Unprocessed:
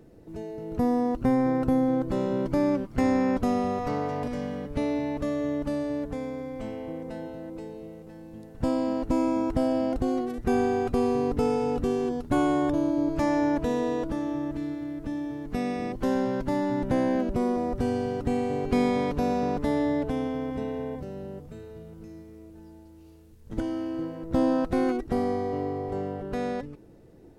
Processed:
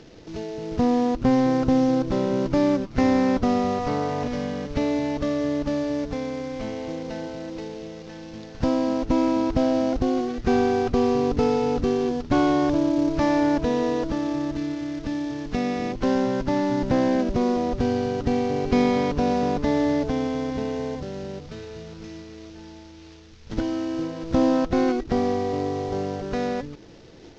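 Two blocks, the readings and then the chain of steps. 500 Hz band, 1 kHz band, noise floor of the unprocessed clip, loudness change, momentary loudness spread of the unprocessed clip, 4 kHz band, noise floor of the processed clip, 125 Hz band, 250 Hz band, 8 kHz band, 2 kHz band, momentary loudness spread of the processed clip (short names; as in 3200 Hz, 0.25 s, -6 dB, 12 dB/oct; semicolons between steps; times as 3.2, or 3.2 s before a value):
+4.0 dB, +4.0 dB, -50 dBFS, +3.5 dB, 14 LU, +8.0 dB, -45 dBFS, +4.0 dB, +3.5 dB, n/a, +4.5 dB, 14 LU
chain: CVSD 32 kbps; mismatched tape noise reduction encoder only; gain +4 dB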